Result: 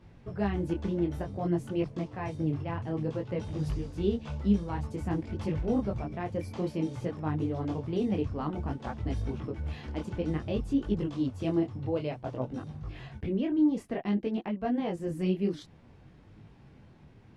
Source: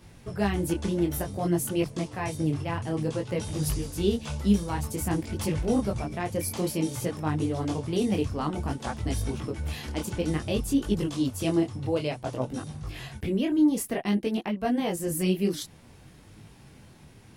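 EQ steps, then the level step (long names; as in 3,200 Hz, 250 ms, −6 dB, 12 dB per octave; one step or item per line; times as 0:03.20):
head-to-tape spacing loss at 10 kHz 24 dB
−2.5 dB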